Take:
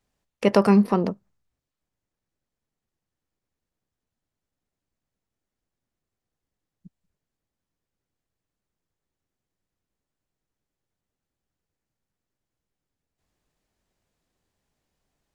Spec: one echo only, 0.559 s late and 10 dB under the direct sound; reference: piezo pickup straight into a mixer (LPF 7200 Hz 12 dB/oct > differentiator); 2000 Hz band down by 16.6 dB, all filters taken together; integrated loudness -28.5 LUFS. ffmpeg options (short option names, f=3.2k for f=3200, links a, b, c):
-af "lowpass=7.2k,aderivative,equalizer=f=2k:t=o:g=-7.5,aecho=1:1:559:0.316,volume=15.5dB"